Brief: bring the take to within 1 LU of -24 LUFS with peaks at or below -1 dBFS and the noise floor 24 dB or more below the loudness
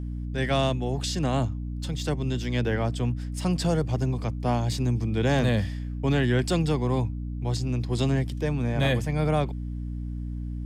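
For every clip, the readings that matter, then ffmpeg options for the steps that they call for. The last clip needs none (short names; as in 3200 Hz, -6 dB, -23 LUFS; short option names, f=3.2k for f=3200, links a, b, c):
hum 60 Hz; harmonics up to 300 Hz; hum level -29 dBFS; loudness -27.0 LUFS; peak -12.5 dBFS; loudness target -24.0 LUFS
-> -af "bandreject=f=60:t=h:w=4,bandreject=f=120:t=h:w=4,bandreject=f=180:t=h:w=4,bandreject=f=240:t=h:w=4,bandreject=f=300:t=h:w=4"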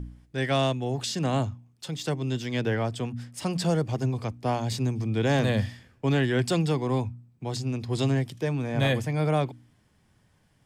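hum none; loudness -27.5 LUFS; peak -13.0 dBFS; loudness target -24.0 LUFS
-> -af "volume=3.5dB"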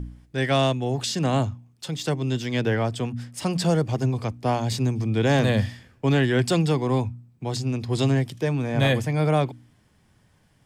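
loudness -24.0 LUFS; peak -9.5 dBFS; noise floor -61 dBFS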